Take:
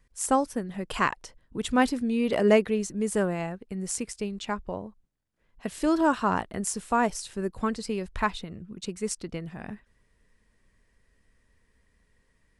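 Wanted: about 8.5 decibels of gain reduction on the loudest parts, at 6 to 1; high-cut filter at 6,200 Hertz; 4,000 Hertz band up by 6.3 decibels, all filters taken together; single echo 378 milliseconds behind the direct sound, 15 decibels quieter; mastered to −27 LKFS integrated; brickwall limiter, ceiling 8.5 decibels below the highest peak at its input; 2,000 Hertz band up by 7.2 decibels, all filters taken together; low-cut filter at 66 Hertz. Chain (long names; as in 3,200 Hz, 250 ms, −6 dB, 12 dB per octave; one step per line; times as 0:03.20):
high-pass filter 66 Hz
low-pass filter 6,200 Hz
parametric band 2,000 Hz +8 dB
parametric band 4,000 Hz +6 dB
downward compressor 6 to 1, threshold −23 dBFS
brickwall limiter −19.5 dBFS
single-tap delay 378 ms −15 dB
level +5 dB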